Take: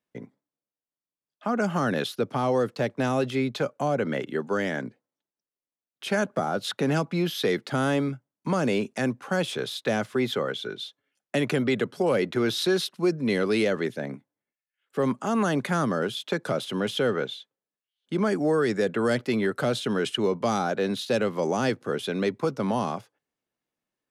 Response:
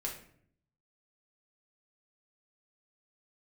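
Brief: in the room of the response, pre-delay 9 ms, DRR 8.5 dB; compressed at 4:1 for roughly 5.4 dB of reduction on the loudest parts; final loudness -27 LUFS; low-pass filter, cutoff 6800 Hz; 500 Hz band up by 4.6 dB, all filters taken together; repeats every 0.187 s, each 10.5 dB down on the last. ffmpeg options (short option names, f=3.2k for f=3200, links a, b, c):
-filter_complex "[0:a]lowpass=6.8k,equalizer=f=500:t=o:g=5.5,acompressor=threshold=-22dB:ratio=4,aecho=1:1:187|374|561:0.299|0.0896|0.0269,asplit=2[a][b];[1:a]atrim=start_sample=2205,adelay=9[c];[b][c]afir=irnorm=-1:irlink=0,volume=-9.5dB[d];[a][d]amix=inputs=2:normalize=0,volume=-0.5dB"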